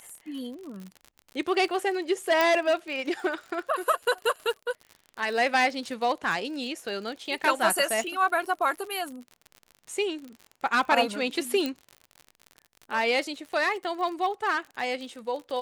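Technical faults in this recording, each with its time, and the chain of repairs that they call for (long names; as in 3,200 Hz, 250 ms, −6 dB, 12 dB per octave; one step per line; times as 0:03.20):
surface crackle 50 per second −35 dBFS
0:02.41: click −10 dBFS
0:11.66: click −15 dBFS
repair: click removal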